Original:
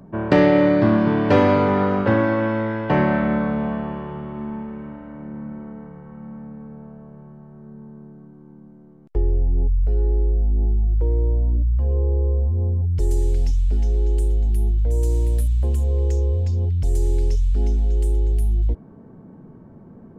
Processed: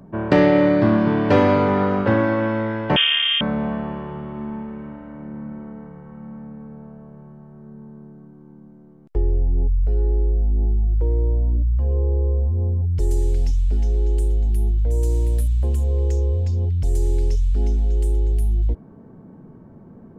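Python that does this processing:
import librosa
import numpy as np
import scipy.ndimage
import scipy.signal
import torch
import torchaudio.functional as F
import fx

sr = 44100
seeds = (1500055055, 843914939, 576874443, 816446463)

y = fx.freq_invert(x, sr, carrier_hz=3400, at=(2.96, 3.41))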